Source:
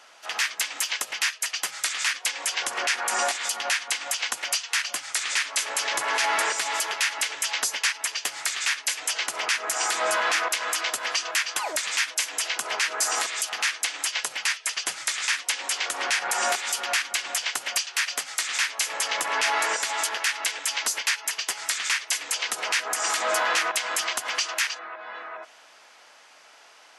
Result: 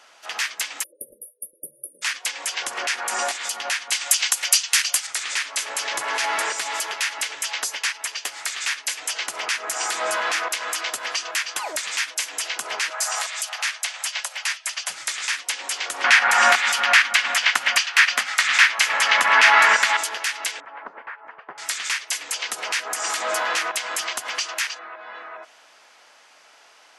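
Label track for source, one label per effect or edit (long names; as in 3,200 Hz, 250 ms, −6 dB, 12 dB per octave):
0.830000	2.030000	time-frequency box erased 620–9,300 Hz
3.920000	5.070000	spectral tilt +3.5 dB per octave
7.490000	8.580000	bass and treble bass −7 dB, treble −1 dB
12.900000	14.900000	Butterworth high-pass 530 Hz 72 dB per octave
16.040000	19.970000	drawn EQ curve 130 Hz 0 dB, 220 Hz +11 dB, 370 Hz −2 dB, 570 Hz +4 dB, 1,300 Hz +12 dB, 1,900 Hz +13 dB, 8,800 Hz −1 dB
20.600000	21.580000	low-pass filter 1,400 Hz 24 dB per octave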